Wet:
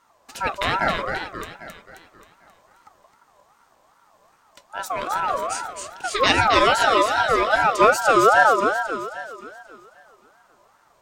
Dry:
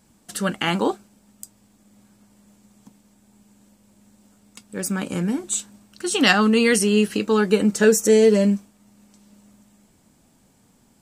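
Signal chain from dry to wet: bell 10000 Hz -15 dB 0.67 oct; split-band echo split 340 Hz, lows 0.172 s, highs 0.266 s, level -4 dB; ring modulator with a swept carrier 980 Hz, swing 20%, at 2.5 Hz; gain +1.5 dB

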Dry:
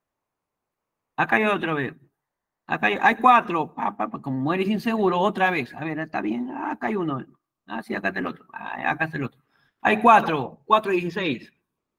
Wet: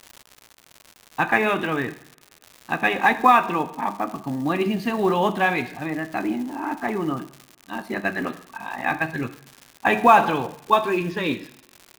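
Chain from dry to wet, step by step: short-mantissa float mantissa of 4-bit; two-slope reverb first 0.65 s, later 2.4 s, from -27 dB, DRR 10 dB; crackle 160/s -31 dBFS

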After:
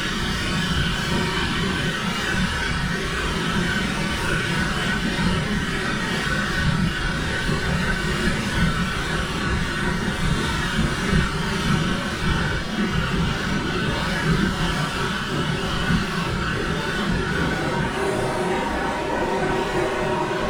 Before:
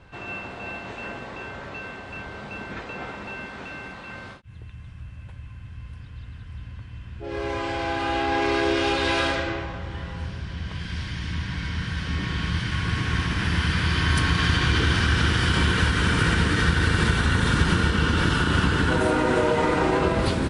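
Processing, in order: minimum comb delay 5.3 ms; Paulstretch 4.9×, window 0.05 s, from 15.34

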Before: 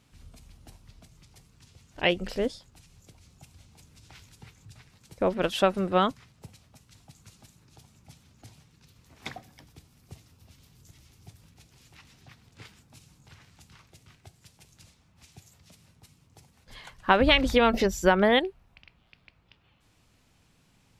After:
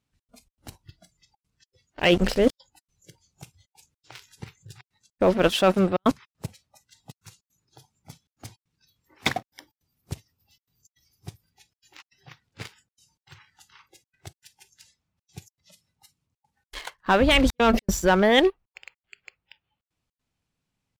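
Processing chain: sample leveller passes 2; reverse; compressor 8:1, threshold -24 dBFS, peak gain reduction 14 dB; reverse; step gate "xx.xx.xxxxxx" 156 bpm -60 dB; spectral noise reduction 21 dB; gain +8 dB

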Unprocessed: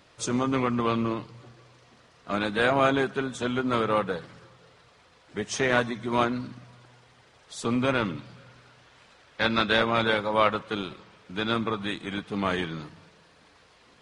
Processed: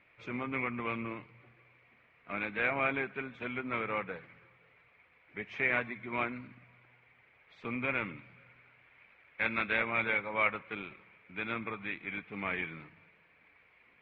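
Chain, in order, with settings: ladder low-pass 2400 Hz, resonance 80%

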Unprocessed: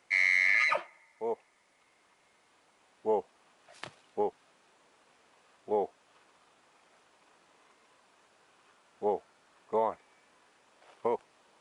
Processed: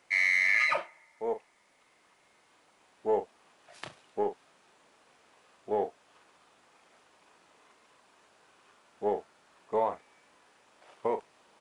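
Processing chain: in parallel at -8.5 dB: soft clip -28.5 dBFS, distortion -9 dB; on the sum: doubler 39 ms -10 dB; gain -1.5 dB

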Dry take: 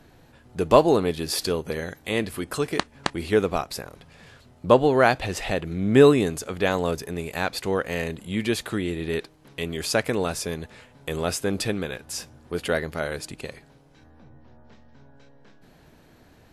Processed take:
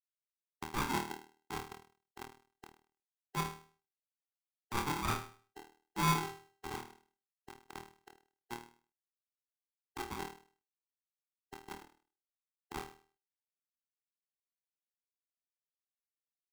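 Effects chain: spectral delay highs late, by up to 0.332 s; notches 60/120/180/240/300 Hz; Schmitt trigger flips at -17 dBFS; tilt -1.5 dB/oct; negative-ratio compressor -27 dBFS, ratio -1; reverb removal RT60 1.5 s; limiter -29.5 dBFS, peak gain reduction 25.5 dB; transient shaper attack -2 dB, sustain -7 dB; brick-wall FIR band-pass 160–1300 Hz; flutter echo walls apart 4.4 m, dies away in 0.41 s; on a send at -20.5 dB: reverb RT60 0.35 s, pre-delay 4 ms; on the sum: polarity switched at an audio rate 590 Hz; gain +1.5 dB

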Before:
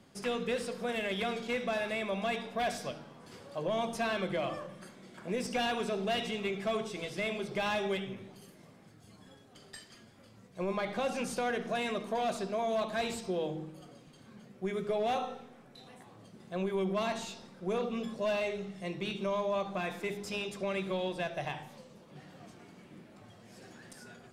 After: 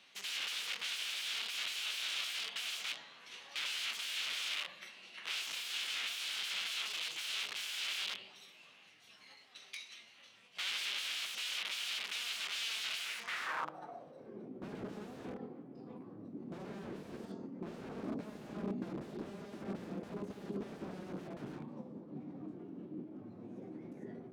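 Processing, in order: wrapped overs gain 37 dB; band-pass sweep 2400 Hz -> 210 Hz, 12.97–14.65; formant shift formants +4 st; gain +11 dB

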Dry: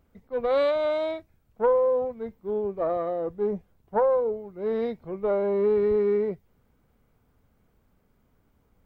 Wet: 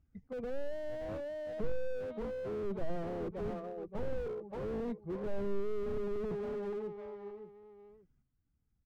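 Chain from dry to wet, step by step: per-bin expansion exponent 1.5; 3.5–4.41 resonator 61 Hz, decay 0.78 s, harmonics all, mix 80%; chopper 0.76 Hz, depth 65%, duty 25%; one-sided clip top -37 dBFS, bottom -26.5 dBFS; air absorption 160 m; feedback echo 0.572 s, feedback 31%, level -10.5 dB; slew limiter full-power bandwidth 2 Hz; gain +10 dB

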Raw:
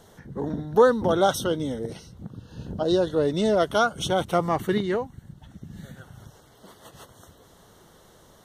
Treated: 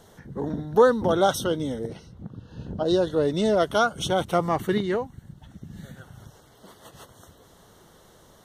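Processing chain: 1.87–2.85 high shelf 4100 Hz -> 7100 Hz -11.5 dB

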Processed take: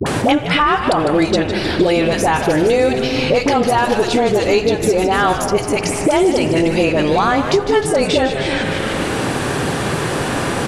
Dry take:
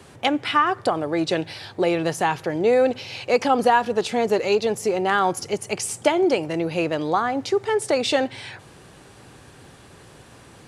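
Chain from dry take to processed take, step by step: limiter -13.5 dBFS, peak gain reduction 8.5 dB; dispersion highs, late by 63 ms, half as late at 700 Hz; frequency-shifting echo 0.152 s, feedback 60%, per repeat -120 Hz, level -11 dB; spring tank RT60 2 s, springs 39 ms, chirp 45 ms, DRR 10.5 dB; three-band squash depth 100%; gain +7.5 dB

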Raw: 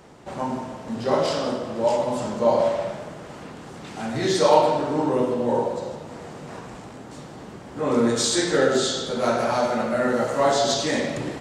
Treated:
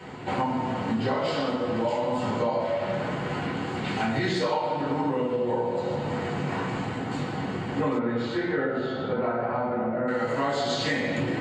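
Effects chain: reverb RT60 0.40 s, pre-delay 3 ms, DRR -4 dB; compressor 12:1, threshold -18 dBFS, peak gain reduction 19.5 dB; 7.98–10.07 LPF 2400 Hz -> 1000 Hz 12 dB/oct; gain -5 dB

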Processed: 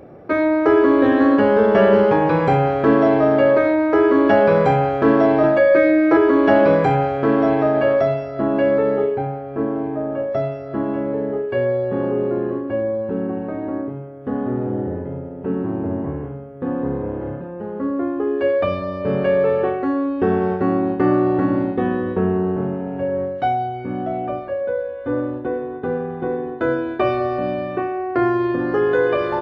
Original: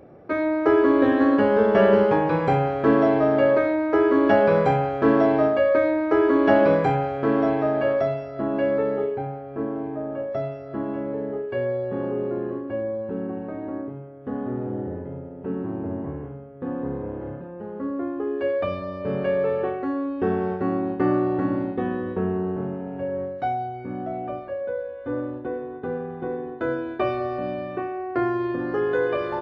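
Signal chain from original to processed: 5.43–6.17 comb 5.9 ms, depth 98%; 23.35–24.26 bell 3100 Hz +6.5 dB 0.31 oct; in parallel at 0 dB: limiter -15.5 dBFS, peak gain reduction 9.5 dB

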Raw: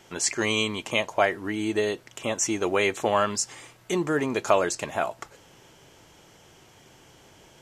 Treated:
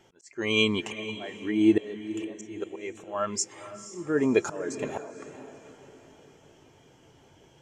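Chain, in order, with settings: auto swell 0.732 s; diffused feedback echo 0.482 s, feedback 54%, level -8 dB; spectral expander 1.5:1; gain +7 dB

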